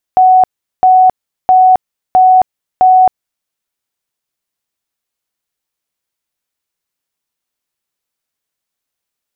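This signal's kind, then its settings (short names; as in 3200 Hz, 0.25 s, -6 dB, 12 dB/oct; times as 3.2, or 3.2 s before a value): tone bursts 744 Hz, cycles 199, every 0.66 s, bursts 5, -3 dBFS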